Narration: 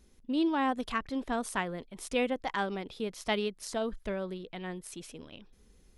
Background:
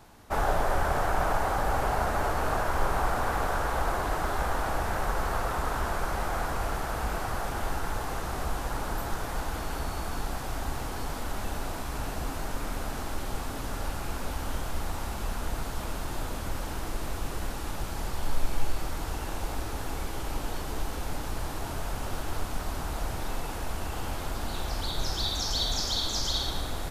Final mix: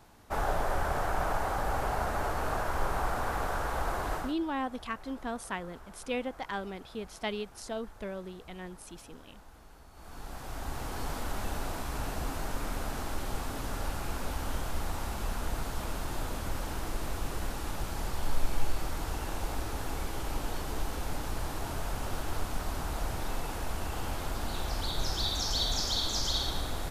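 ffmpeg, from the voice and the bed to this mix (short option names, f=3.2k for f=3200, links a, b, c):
-filter_complex "[0:a]adelay=3950,volume=-4dB[a];[1:a]volume=16.5dB,afade=t=out:st=4.15:d=0.2:silence=0.125893,afade=t=in:st=9.92:d=1.15:silence=0.0944061[b];[a][b]amix=inputs=2:normalize=0"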